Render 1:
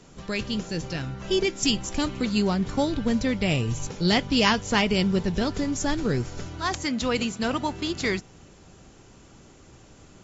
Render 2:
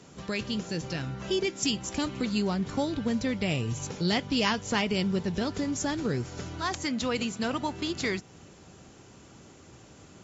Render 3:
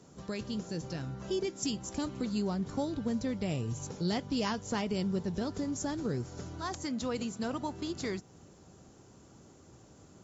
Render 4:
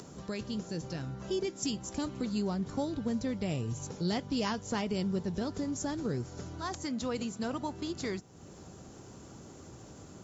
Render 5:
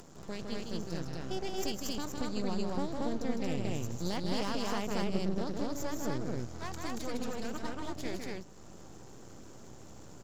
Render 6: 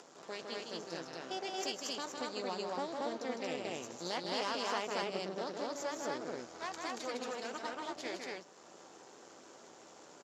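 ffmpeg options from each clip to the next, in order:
-af "highpass=75,acompressor=threshold=-32dB:ratio=1.5"
-af "equalizer=f=2.5k:w=0.92:g=-9,volume=-4dB"
-af "acompressor=mode=upward:threshold=-41dB:ratio=2.5"
-filter_complex "[0:a]aeval=exprs='max(val(0),0)':c=same,asplit=2[a][b];[b]aecho=0:1:157.4|230.3:0.562|0.891[c];[a][c]amix=inputs=2:normalize=0,volume=-1dB"
-filter_complex "[0:a]highpass=460,lowpass=6.5k,asplit=2[a][b];[b]adelay=12,volume=-12dB[c];[a][c]amix=inputs=2:normalize=0,volume=1.5dB"

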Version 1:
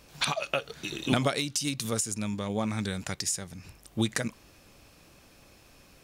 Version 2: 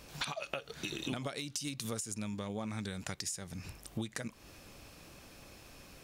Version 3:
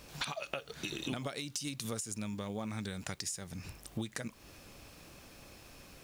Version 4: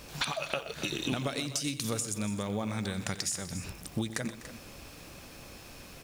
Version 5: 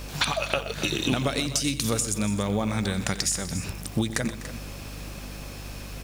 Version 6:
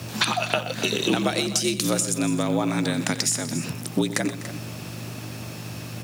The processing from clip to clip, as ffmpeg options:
-af "acompressor=threshold=-38dB:ratio=6,volume=2dB"
-af "acrusher=bits=10:mix=0:aa=0.000001"
-af "aecho=1:1:90|126|249|287:0.141|0.168|0.119|0.211,volume=5.5dB"
-af "aeval=exprs='val(0)+0.00562*(sin(2*PI*50*n/s)+sin(2*PI*2*50*n/s)/2+sin(2*PI*3*50*n/s)/3+sin(2*PI*4*50*n/s)/4+sin(2*PI*5*50*n/s)/5)':c=same,volume=7dB"
-af "afreqshift=67,volume=2.5dB"

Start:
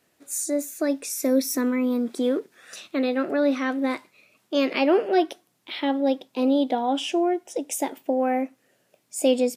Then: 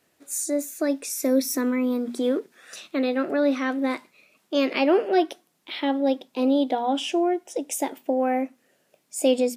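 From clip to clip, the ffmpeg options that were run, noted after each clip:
-af "bandreject=f=60:t=h:w=6,bandreject=f=120:t=h:w=6,bandreject=f=180:t=h:w=6,bandreject=f=240:t=h:w=6"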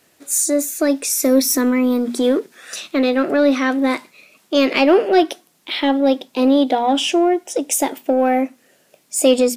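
-filter_complex "[0:a]highshelf=f=8.1k:g=-11.5,crystalizer=i=2:c=0,asplit=2[a][b];[b]asoftclip=type=tanh:threshold=-25dB,volume=-7.5dB[c];[a][c]amix=inputs=2:normalize=0,volume=5.5dB"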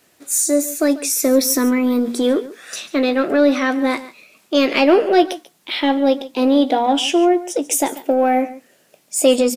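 -filter_complex "[0:a]asplit=2[a][b];[b]adelay=17,volume=-12.5dB[c];[a][c]amix=inputs=2:normalize=0,aecho=1:1:141:0.141,acrusher=bits=11:mix=0:aa=0.000001"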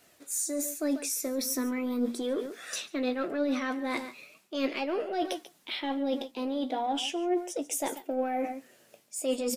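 -af "areverse,acompressor=threshold=-25dB:ratio=5,areverse,flanger=delay=1.4:depth=7.4:regen=62:speed=0.39:shape=sinusoidal"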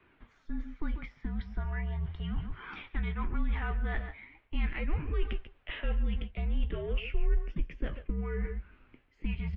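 -filter_complex "[0:a]acrossover=split=640|1400[a][b][c];[a]acompressor=threshold=-34dB:ratio=4[d];[b]acompressor=threshold=-47dB:ratio=4[e];[c]acompressor=threshold=-36dB:ratio=4[f];[d][e][f]amix=inputs=3:normalize=0,highpass=f=210:t=q:w=0.5412,highpass=f=210:t=q:w=1.307,lowpass=f=3.1k:t=q:w=0.5176,lowpass=f=3.1k:t=q:w=0.7071,lowpass=f=3.1k:t=q:w=1.932,afreqshift=-320,asubboost=boost=3.5:cutoff=75"

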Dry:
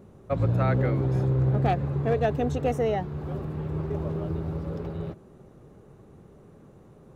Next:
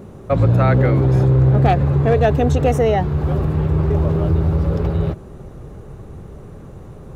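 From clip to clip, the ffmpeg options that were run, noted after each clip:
-filter_complex "[0:a]asubboost=boost=3:cutoff=110,asplit=2[a][b];[b]alimiter=limit=-24dB:level=0:latency=1:release=48,volume=3dB[c];[a][c]amix=inputs=2:normalize=0,volume=5.5dB"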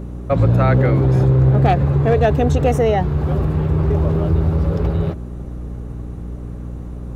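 -af "aeval=exprs='val(0)+0.0398*(sin(2*PI*60*n/s)+sin(2*PI*2*60*n/s)/2+sin(2*PI*3*60*n/s)/3+sin(2*PI*4*60*n/s)/4+sin(2*PI*5*60*n/s)/5)':c=same"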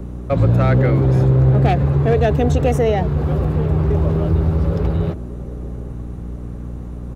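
-filter_complex "[0:a]acrossover=split=190|760|1300[a][b][c][d];[b]aecho=1:1:771:0.224[e];[c]asoftclip=type=tanh:threshold=-32.5dB[f];[a][e][f][d]amix=inputs=4:normalize=0"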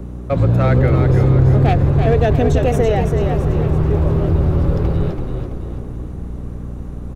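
-filter_complex "[0:a]asplit=7[a][b][c][d][e][f][g];[b]adelay=332,afreqshift=-36,volume=-5.5dB[h];[c]adelay=664,afreqshift=-72,volume=-12.2dB[i];[d]adelay=996,afreqshift=-108,volume=-19dB[j];[e]adelay=1328,afreqshift=-144,volume=-25.7dB[k];[f]adelay=1660,afreqshift=-180,volume=-32.5dB[l];[g]adelay=1992,afreqshift=-216,volume=-39.2dB[m];[a][h][i][j][k][l][m]amix=inputs=7:normalize=0"

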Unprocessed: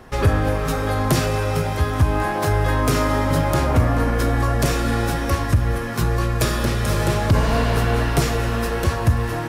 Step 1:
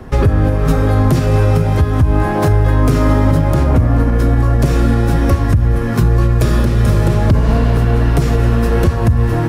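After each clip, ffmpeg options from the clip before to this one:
-filter_complex "[0:a]tiltshelf=f=740:g=10,acrossover=split=180|1100[a][b][c];[c]acontrast=69[d];[a][b][d]amix=inputs=3:normalize=0,alimiter=limit=-8dB:level=0:latency=1:release=232,volume=4.5dB"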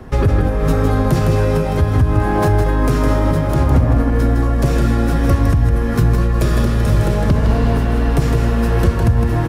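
-af "aecho=1:1:159:0.531,volume=-2.5dB"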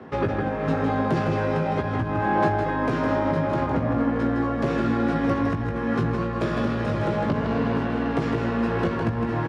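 -filter_complex "[0:a]asoftclip=type=tanh:threshold=-5dB,highpass=200,lowpass=3.2k,asplit=2[a][b];[b]adelay=18,volume=-6dB[c];[a][c]amix=inputs=2:normalize=0,volume=-3.5dB"

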